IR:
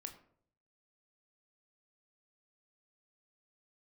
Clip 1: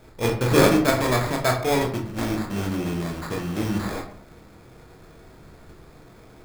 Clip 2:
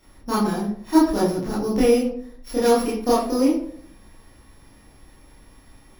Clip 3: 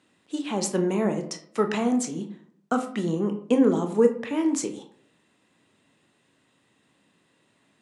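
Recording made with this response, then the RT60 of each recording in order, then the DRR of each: 3; 0.60, 0.60, 0.60 seconds; 1.0, −8.5, 5.5 decibels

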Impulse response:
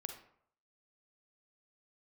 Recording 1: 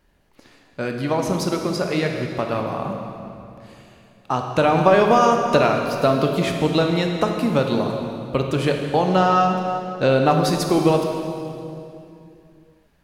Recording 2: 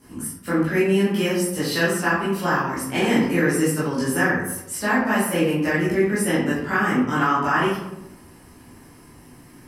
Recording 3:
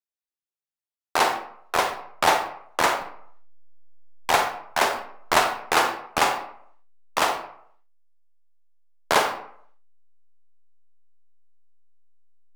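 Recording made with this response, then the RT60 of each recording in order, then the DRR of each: 3; 2.7, 0.90, 0.65 seconds; 2.5, −11.5, 5.0 decibels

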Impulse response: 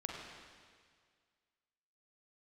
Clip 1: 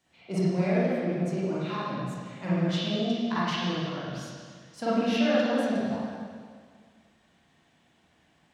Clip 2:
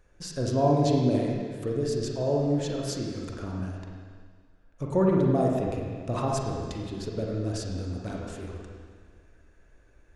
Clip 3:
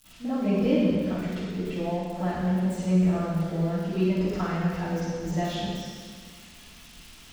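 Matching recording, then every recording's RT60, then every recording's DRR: 2; 1.9, 1.9, 1.9 seconds; −10.5, −2.0, −19.0 decibels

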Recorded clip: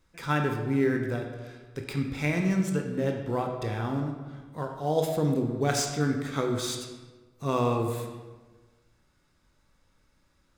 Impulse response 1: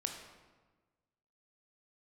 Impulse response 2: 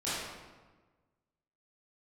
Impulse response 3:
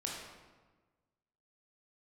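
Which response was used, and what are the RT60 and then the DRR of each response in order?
1; 1.3, 1.3, 1.3 seconds; 3.0, −13.0, −3.0 decibels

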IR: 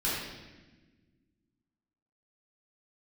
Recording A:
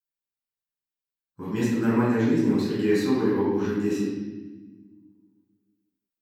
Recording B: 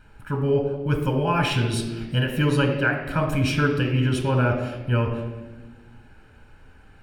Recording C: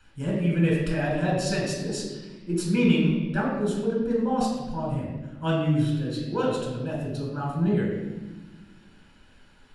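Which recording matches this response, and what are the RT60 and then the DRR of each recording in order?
A; 1.3, 1.3, 1.3 seconds; −9.0, 3.5, −3.0 decibels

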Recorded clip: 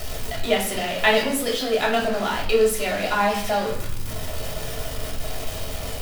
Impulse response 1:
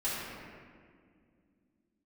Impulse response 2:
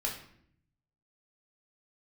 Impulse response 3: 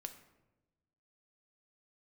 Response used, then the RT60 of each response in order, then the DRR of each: 2; 2.1, 0.65, 1.1 seconds; −12.0, −2.5, 7.0 decibels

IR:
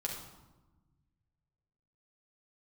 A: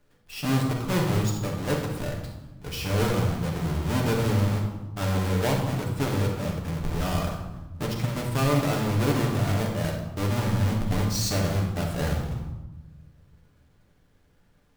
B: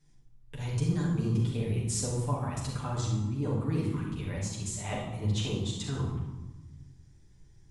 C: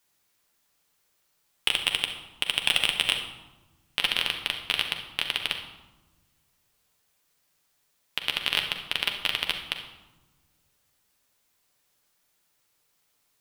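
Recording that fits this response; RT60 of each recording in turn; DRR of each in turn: A; 1.1, 1.1, 1.1 seconds; −1.0, −5.5, 3.0 decibels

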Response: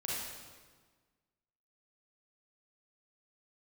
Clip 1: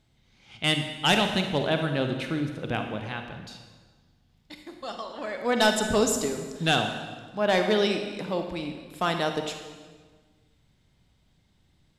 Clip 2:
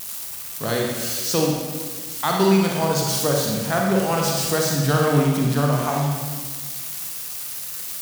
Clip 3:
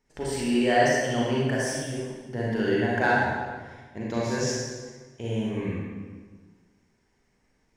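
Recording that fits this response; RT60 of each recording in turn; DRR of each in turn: 3; 1.5, 1.5, 1.5 seconds; 5.0, −1.5, −6.0 decibels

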